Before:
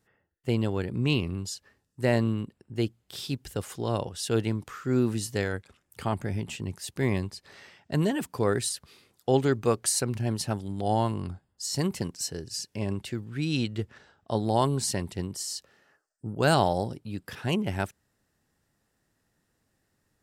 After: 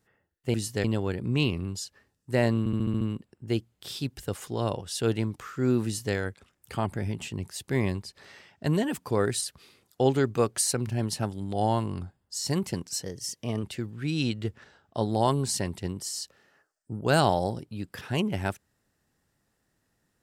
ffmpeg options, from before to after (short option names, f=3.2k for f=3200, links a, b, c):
-filter_complex "[0:a]asplit=11[a][b][c][d][e][f][g][h][i][j][k];[a]atrim=end=0.542[l];[b]atrim=start=5.128:end=5.432[m];[c]atrim=start=0.538:end=2.362[n];[d]atrim=start=2.288:end=2.362[o];[e]atrim=start=2.288:end=2.362[p];[f]atrim=start=2.288:end=2.362[q];[g]atrim=start=2.288:end=2.362[r];[h]atrim=start=2.288:end=2.362[s];[i]atrim=start=2.288:end=12.314[t];[j]atrim=start=12.31:end=12.97,asetpts=PTS-STARTPTS,asetrate=48510,aresample=44100[u];[k]atrim=start=12.966[v];[l][m]acrossfade=d=0.004:c1=hsin:c2=hsin[w];[w][n]acrossfade=d=0.004:c1=hsin:c2=hsin[x];[x][o]acrossfade=d=0.004:c1=hsin:c2=hsin[y];[y][p]acrossfade=d=0.004:c1=hsin:c2=hsin[z];[z][q]acrossfade=d=0.004:c1=hsin:c2=hsin[aa];[aa][r]acrossfade=d=0.004:c1=hsin:c2=hsin[ab];[ab][s]acrossfade=d=0.004:c1=hsin:c2=hsin[ac];[ac][t]acrossfade=d=0.004:c1=hsin:c2=hsin[ad];[ad][u]acrossfade=d=0.004:c1=hsin:c2=hsin[ae];[ae][v]acrossfade=d=0.004:c1=hsin:c2=hsin"